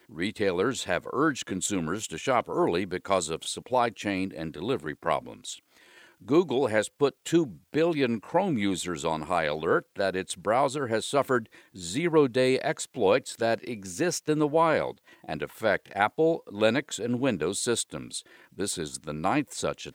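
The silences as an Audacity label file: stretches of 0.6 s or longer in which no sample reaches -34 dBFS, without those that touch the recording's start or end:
5.540000	6.280000	silence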